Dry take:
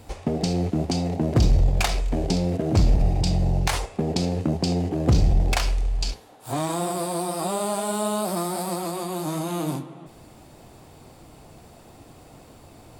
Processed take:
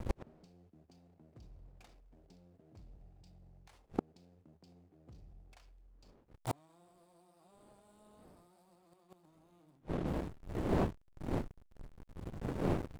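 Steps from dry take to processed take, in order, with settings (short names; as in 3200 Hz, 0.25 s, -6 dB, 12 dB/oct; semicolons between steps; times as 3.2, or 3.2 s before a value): wind noise 510 Hz -35 dBFS; backlash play -31.5 dBFS; flipped gate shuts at -21 dBFS, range -40 dB; gain +1.5 dB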